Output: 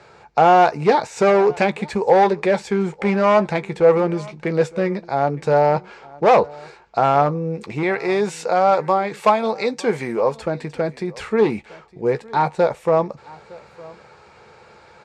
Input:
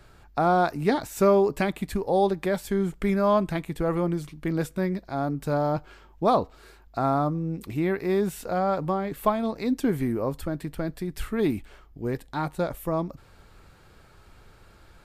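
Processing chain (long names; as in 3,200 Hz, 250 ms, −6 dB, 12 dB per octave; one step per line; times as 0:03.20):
0:07.83–0:10.37: spectral tilt +2 dB per octave
hard clipping −19 dBFS, distortion −13 dB
loudspeaker in its box 160–7,000 Hz, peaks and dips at 280 Hz −10 dB, 480 Hz +9 dB, 870 Hz +8 dB, 2,300 Hz +5 dB, 3,200 Hz −4 dB
double-tracking delay 14 ms −12 dB
single-tap delay 910 ms −22.5 dB
level +7 dB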